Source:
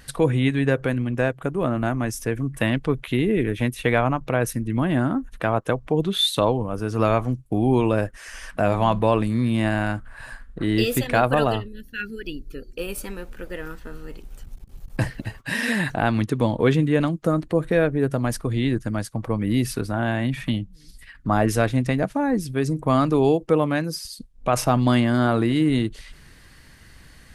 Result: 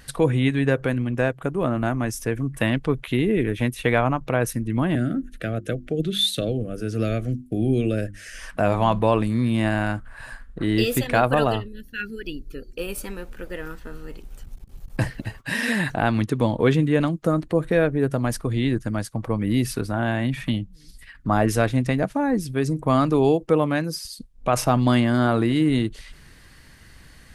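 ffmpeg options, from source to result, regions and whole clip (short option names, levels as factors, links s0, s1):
-filter_complex "[0:a]asettb=1/sr,asplit=3[s0][s1][s2];[s0]atrim=end=4.954[s3];[s1]atrim=start=4.95:end=8.39,asetpts=PTS-STARTPTS,afade=t=in:d=0.004:c=qsin,afade=t=out:st=3.436:d=0.004:c=qsin,bandreject=f=50:t=h:w=6,bandreject=f=100:t=h:w=6,bandreject=f=150:t=h:w=6,bandreject=f=200:t=h:w=6,bandreject=f=250:t=h:w=6,bandreject=f=300:t=h:w=6,bandreject=f=350:t=h:w=6,acrossover=split=320|3000[s4][s5][s6];[s5]acompressor=threshold=0.0251:ratio=1.5:attack=3.2:release=140:knee=2.83:detection=peak[s7];[s4][s7][s6]amix=inputs=3:normalize=0,asuperstop=centerf=950:order=4:qfactor=1.2[s8];[s2]atrim=start=8.386[s9];[s3][s8]acrossfade=d=0.004:c1=hsin:c2=qsin[s10];[s10][s9]acrossfade=d=0.004:c1=qsin:c2=hsin"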